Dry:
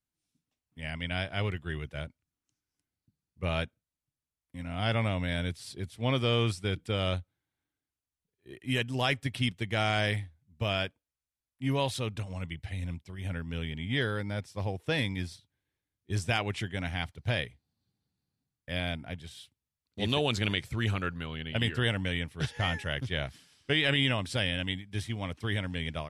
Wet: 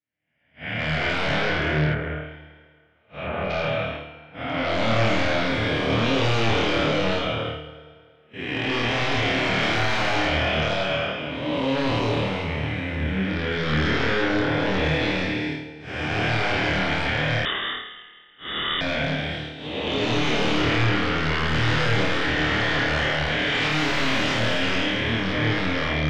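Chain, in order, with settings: spectral blur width 632 ms; high-pass 330 Hz 6 dB/octave; gate -53 dBFS, range -26 dB; peaking EQ 1.7 kHz +3 dB 0.77 oct; FDN reverb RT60 2 s, low-frequency decay 0.75×, high-frequency decay 0.85×, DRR 10 dB; flange 1.1 Hz, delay 6.2 ms, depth 9.7 ms, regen +29%; sine folder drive 19 dB, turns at -20 dBFS; distance through air 200 m; flutter echo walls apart 4.5 m, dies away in 0.51 s; 1.93–3.50 s: low-pass that closes with the level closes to 2.1 kHz, closed at -25.5 dBFS; 17.45–18.81 s: frequency inversion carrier 3.6 kHz

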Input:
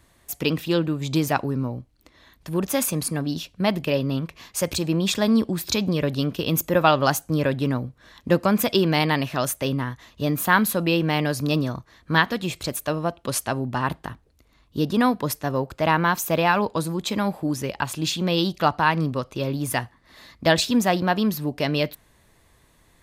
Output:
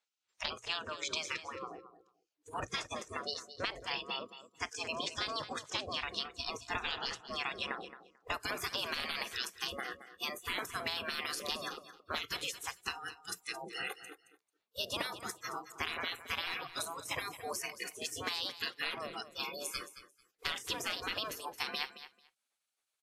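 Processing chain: de-esser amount 65%; spectral gate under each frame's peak -20 dB weak; hum notches 60/120/180 Hz; spectral noise reduction 25 dB; low-pass 7 kHz 24 dB/octave, from 8.34 s 12 kHz; compression 5:1, threshold -38 dBFS, peak gain reduction 10 dB; feedback delay 221 ms, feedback 16%, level -13.5 dB; trim +4.5 dB; WMA 128 kbps 48 kHz

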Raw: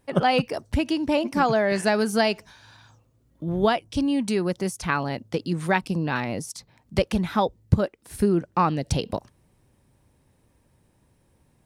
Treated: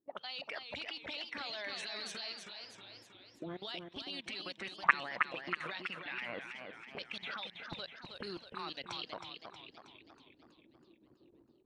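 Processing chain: coarse spectral quantiser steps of 15 dB; auto-wah 330–4000 Hz, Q 4.9, up, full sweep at -20 dBFS; hum notches 50/100/150 Hz; level rider gain up to 12 dB; band-stop 4.9 kHz, Q 9; level held to a coarse grid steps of 22 dB; distance through air 53 m; modulated delay 321 ms, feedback 54%, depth 124 cents, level -6 dB; trim +2 dB

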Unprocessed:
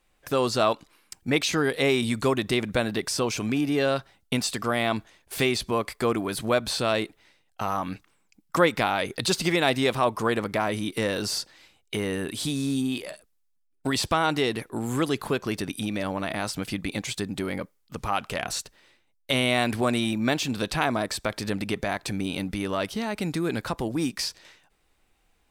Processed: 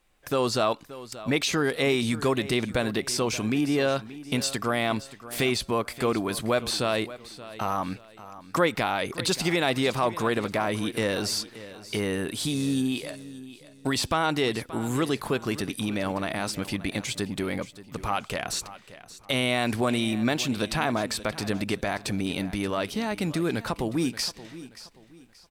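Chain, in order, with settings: in parallel at 0 dB: peak limiter -17.5 dBFS, peak gain reduction 9.5 dB; on the sum: feedback delay 578 ms, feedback 32%, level -16 dB; trim -5.5 dB

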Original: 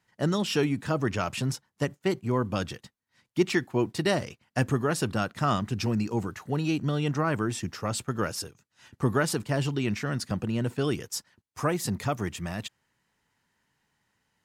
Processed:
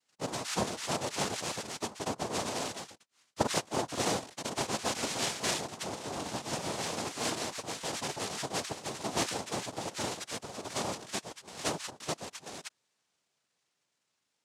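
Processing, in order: ever faster or slower copies 374 ms, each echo +2 st, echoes 2; high-pass 390 Hz 24 dB/octave; noise-vocoded speech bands 2; trim -5 dB

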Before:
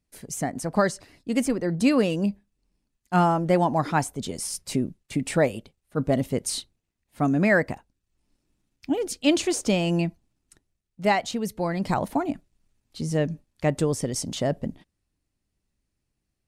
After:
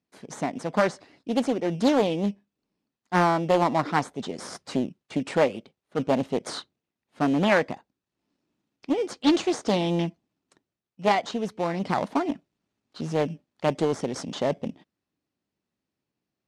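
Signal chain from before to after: in parallel at -7 dB: sample-and-hold 16×; on the sum: band-pass 190–5200 Hz; loudspeaker Doppler distortion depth 0.46 ms; trim -2 dB

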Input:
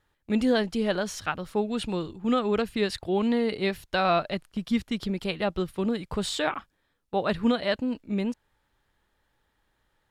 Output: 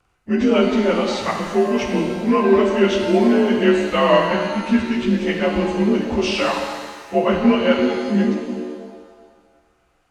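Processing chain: frequency axis rescaled in octaves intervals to 88%; pitch-shifted reverb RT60 1.6 s, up +7 st, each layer -8 dB, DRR 2 dB; trim +8.5 dB

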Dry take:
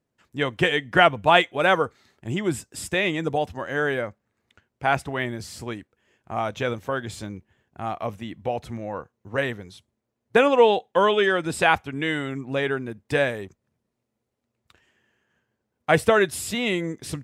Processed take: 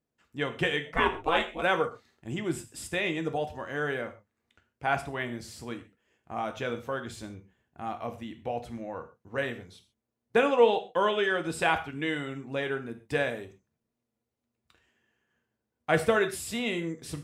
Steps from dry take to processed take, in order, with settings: 0.85–1.61 s: ring modulator 420 Hz -> 89 Hz; gated-style reverb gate 160 ms falling, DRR 6.5 dB; trim -7 dB

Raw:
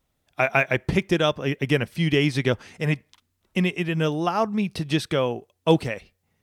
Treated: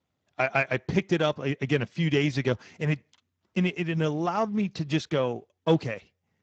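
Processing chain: single-diode clipper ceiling -6.5 dBFS; trim -3 dB; Speex 13 kbps 16 kHz

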